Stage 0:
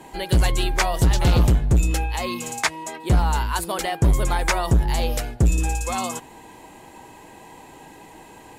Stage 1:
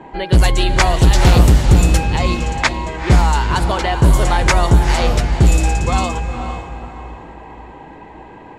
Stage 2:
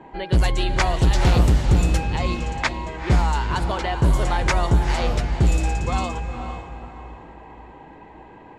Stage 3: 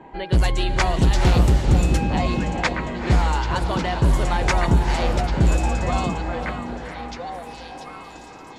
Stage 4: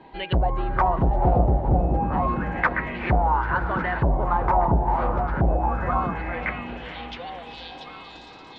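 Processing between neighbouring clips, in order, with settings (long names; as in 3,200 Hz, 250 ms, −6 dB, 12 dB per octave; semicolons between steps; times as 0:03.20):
feedback delay with all-pass diffusion 460 ms, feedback 41%, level −7 dB; low-pass that shuts in the quiet parts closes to 1,800 Hz, open at −12 dBFS; level +6.5 dB
high-shelf EQ 9,100 Hz −9.5 dB; level −6.5 dB
echo through a band-pass that steps 659 ms, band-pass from 230 Hz, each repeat 1.4 octaves, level 0 dB
envelope-controlled low-pass 710–4,300 Hz down, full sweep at −13.5 dBFS; level −4.5 dB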